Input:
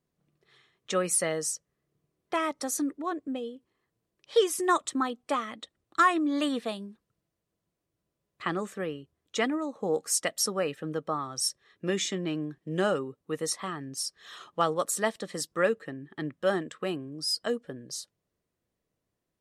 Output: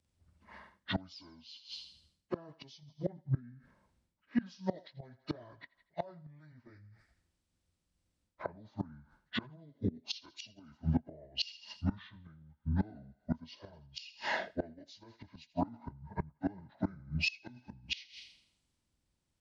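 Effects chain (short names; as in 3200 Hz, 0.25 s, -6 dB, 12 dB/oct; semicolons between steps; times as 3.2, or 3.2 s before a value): pitch shift by moving bins -11.5 st; thinning echo 82 ms, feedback 49%, high-pass 600 Hz, level -16 dB; reverse; compressor 16:1, threshold -40 dBFS, peak gain reduction 23 dB; reverse; flipped gate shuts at -37 dBFS, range -24 dB; three-band expander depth 40%; gain +14.5 dB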